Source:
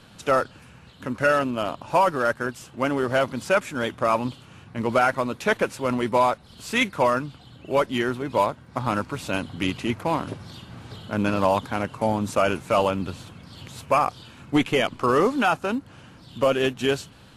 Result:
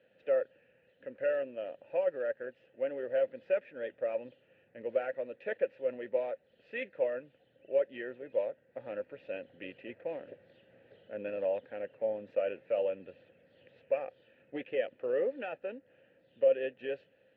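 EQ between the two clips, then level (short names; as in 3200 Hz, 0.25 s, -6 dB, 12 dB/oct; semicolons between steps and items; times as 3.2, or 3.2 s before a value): vowel filter e; air absorption 370 m; -1.5 dB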